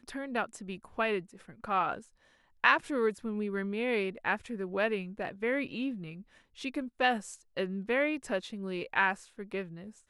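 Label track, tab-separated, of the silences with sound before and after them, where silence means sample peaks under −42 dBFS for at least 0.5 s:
2.000000	2.640000	silence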